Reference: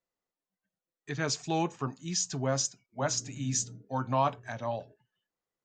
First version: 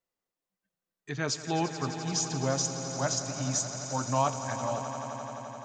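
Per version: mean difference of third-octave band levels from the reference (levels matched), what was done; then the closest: 9.0 dB: echo with a slow build-up 86 ms, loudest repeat 5, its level -13.5 dB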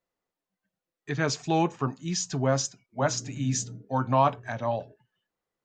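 1.0 dB: treble shelf 5 kHz -9.5 dB; trim +5.5 dB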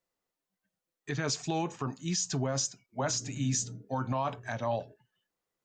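2.5 dB: peak limiter -25 dBFS, peak gain reduction 10 dB; trim +3.5 dB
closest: second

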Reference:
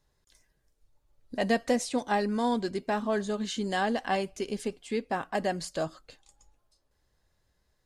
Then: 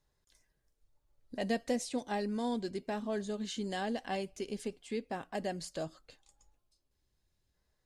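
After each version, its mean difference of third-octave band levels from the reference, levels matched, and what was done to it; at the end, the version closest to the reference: 1.5 dB: time-frequency box 6.59–7.54 s, 410–2100 Hz -6 dB; dynamic bell 1.2 kHz, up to -7 dB, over -44 dBFS, Q 1.1; trim -5.5 dB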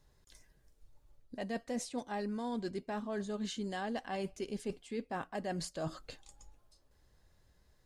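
3.0 dB: bass shelf 360 Hz +4 dB; reverse; compression 6:1, threshold -38 dBFS, peak gain reduction 18 dB; reverse; trim +2 dB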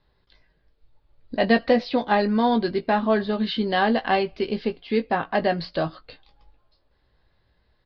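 4.0 dB: steep low-pass 4.7 kHz 72 dB/octave; doubling 18 ms -8.5 dB; trim +7 dB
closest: first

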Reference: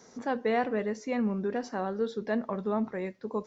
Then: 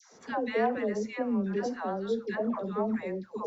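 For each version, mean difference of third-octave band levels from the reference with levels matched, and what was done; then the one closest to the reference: 5.5 dB: phase dispersion lows, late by 135 ms, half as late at 780 Hz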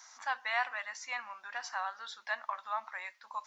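13.5 dB: inverse Chebyshev high-pass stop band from 460 Hz, stop band 40 dB; trim +4 dB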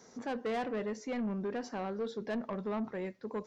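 2.5 dB: saturation -27.5 dBFS, distortion -12 dB; trim -2.5 dB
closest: third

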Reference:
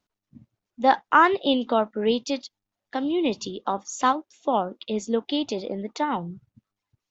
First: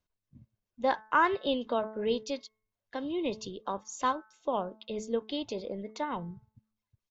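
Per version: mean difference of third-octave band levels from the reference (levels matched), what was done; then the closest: 2.0 dB: bass shelf 130 Hz +10 dB; comb 1.9 ms, depth 34%; de-hum 217.4 Hz, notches 10; trim -8.5 dB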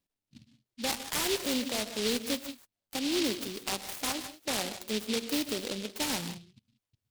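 18.0 dB: peak limiter -16.5 dBFS, peak gain reduction 11.5 dB; gated-style reverb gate 200 ms rising, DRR 9.5 dB; delay time shaken by noise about 3.5 kHz, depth 0.25 ms; trim -5.5 dB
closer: first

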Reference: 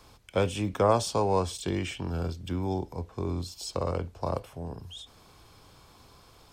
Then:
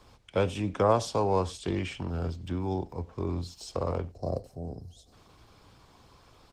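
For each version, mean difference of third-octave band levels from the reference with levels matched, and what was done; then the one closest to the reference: 3.0 dB: time-frequency box 4.11–5.13 s, 790–3900 Hz -15 dB; treble shelf 9.2 kHz -11.5 dB; on a send: delay 93 ms -23.5 dB; on the sum: Opus 16 kbps 48 kHz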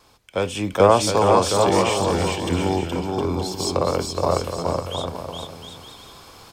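8.0 dB: bass shelf 190 Hz -8.5 dB; vibrato 1.1 Hz 8.5 cents; bouncing-ball echo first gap 420 ms, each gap 0.7×, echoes 5; level rider gain up to 9 dB; trim +1.5 dB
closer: first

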